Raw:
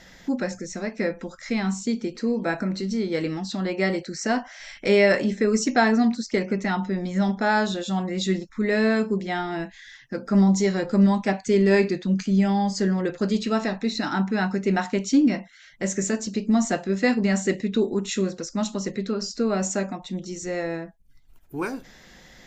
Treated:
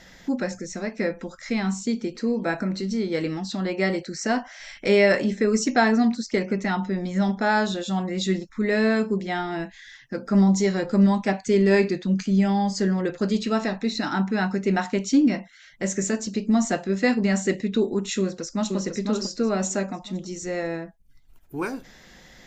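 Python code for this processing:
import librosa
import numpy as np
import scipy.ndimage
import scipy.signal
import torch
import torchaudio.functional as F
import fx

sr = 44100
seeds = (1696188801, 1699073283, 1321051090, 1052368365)

y = fx.echo_throw(x, sr, start_s=18.2, length_s=0.56, ms=500, feedback_pct=35, wet_db=-4.5)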